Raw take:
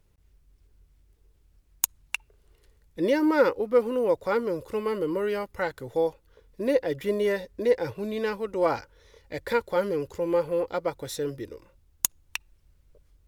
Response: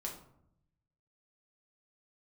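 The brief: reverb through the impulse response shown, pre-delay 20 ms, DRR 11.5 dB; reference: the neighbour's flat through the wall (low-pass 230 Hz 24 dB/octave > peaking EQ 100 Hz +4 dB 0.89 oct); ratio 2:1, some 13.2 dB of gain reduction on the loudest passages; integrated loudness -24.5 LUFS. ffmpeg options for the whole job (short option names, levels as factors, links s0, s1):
-filter_complex "[0:a]acompressor=threshold=0.00891:ratio=2,asplit=2[s0][s1];[1:a]atrim=start_sample=2205,adelay=20[s2];[s1][s2]afir=irnorm=-1:irlink=0,volume=0.282[s3];[s0][s3]amix=inputs=2:normalize=0,lowpass=f=230:w=0.5412,lowpass=f=230:w=1.3066,equalizer=f=100:t=o:w=0.89:g=4,volume=16.8"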